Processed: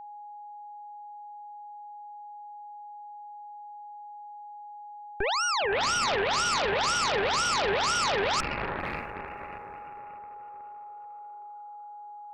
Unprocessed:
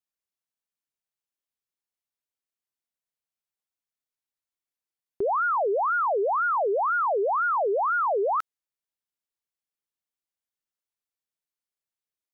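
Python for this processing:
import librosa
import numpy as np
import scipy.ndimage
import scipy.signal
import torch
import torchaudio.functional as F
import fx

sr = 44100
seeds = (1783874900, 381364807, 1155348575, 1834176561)

y = fx.echo_diffused(x, sr, ms=541, feedback_pct=52, wet_db=-11)
y = fx.cheby_harmonics(y, sr, harmonics=(8,), levels_db=(-6,), full_scale_db=-16.0)
y = y + 10.0 ** (-36.0 / 20.0) * np.sin(2.0 * np.pi * 830.0 * np.arange(len(y)) / sr)
y = y * 10.0 ** (-5.0 / 20.0)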